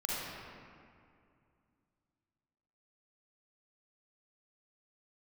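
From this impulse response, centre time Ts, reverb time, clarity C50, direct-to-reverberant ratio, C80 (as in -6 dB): 159 ms, 2.3 s, -5.0 dB, -6.5 dB, -2.0 dB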